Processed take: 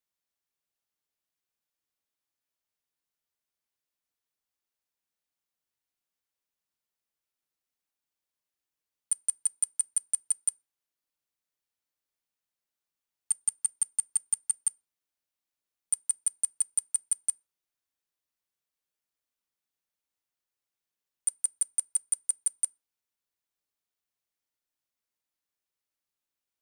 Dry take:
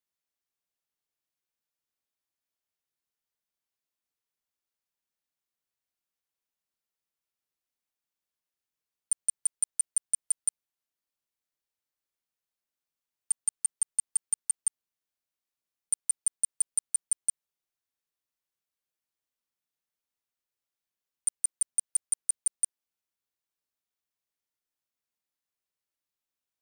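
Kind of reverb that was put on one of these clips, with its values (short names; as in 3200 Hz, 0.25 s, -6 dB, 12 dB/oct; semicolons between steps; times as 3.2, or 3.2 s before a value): FDN reverb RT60 0.35 s, low-frequency decay 0.95×, high-frequency decay 0.6×, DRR 19.5 dB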